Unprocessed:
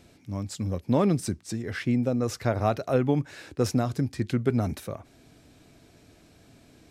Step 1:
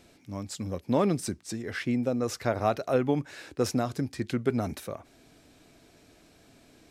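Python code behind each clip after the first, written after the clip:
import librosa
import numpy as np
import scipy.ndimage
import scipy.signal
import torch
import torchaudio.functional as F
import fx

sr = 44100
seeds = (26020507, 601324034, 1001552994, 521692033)

y = fx.peak_eq(x, sr, hz=99.0, db=-7.0, octaves=2.1)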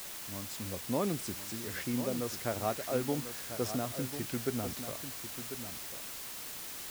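y = fx.quant_dither(x, sr, seeds[0], bits=6, dither='triangular')
y = y + 10.0 ** (-10.0 / 20.0) * np.pad(y, (int(1044 * sr / 1000.0), 0))[:len(y)]
y = y * librosa.db_to_amplitude(-7.5)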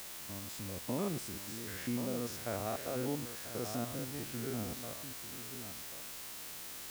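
y = fx.spec_steps(x, sr, hold_ms=100)
y = y * librosa.db_to_amplitude(-1.5)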